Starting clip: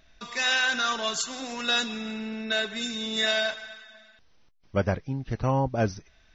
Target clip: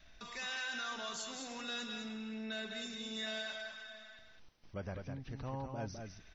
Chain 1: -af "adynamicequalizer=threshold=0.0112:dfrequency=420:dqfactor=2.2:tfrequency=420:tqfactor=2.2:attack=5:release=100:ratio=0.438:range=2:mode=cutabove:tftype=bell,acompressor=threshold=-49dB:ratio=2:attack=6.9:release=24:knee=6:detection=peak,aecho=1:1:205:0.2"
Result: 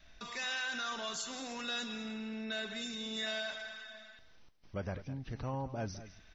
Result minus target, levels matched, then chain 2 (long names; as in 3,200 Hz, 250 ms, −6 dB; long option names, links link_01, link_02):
echo-to-direct −8.5 dB; downward compressor: peak gain reduction −4 dB
-af "adynamicequalizer=threshold=0.0112:dfrequency=420:dqfactor=2.2:tfrequency=420:tqfactor=2.2:attack=5:release=100:ratio=0.438:range=2:mode=cutabove:tftype=bell,acompressor=threshold=-56.5dB:ratio=2:attack=6.9:release=24:knee=6:detection=peak,aecho=1:1:205:0.531"